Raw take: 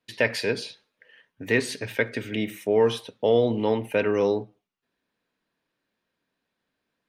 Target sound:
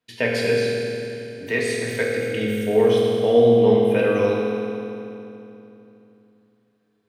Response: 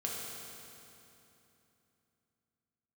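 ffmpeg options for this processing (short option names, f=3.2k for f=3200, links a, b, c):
-filter_complex "[0:a]asettb=1/sr,asplit=3[a][b][c];[a]atrim=end=0.574[d];[b]atrim=start=0.57:end=2.12,asetpts=PTS-STARTPTS,afade=t=in:d=0.004:c=qsin,afade=t=out:st=1.546:d=0.004:c=qsin,acrossover=split=420|3000[e][f][g];[e]acompressor=threshold=-32dB:ratio=6[h];[h][f][g]amix=inputs=3:normalize=0[i];[c]atrim=start=2.116[j];[d][i]acrossfade=d=0.004:c1=hsin:c2=qsin[k];[k][j]acrossfade=d=0.004:c1=qsin:c2=hsin[l];[1:a]atrim=start_sample=2205[m];[l][m]afir=irnorm=-1:irlink=0"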